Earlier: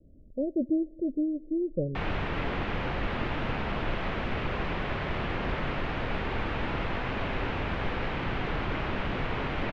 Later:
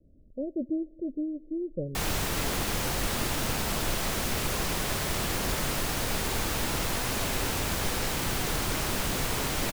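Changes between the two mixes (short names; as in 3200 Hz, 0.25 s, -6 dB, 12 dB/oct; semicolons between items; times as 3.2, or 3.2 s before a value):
speech -3.5 dB; background: remove LPF 2800 Hz 24 dB/oct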